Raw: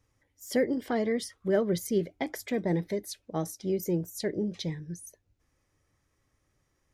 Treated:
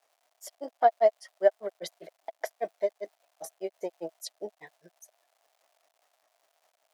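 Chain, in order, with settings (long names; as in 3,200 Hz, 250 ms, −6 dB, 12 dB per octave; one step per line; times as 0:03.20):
granular cloud 102 ms, grains 5 per second, spray 100 ms
surface crackle 350 per second −59 dBFS
high-pass with resonance 670 Hz, resonance Q 7.1
level +2 dB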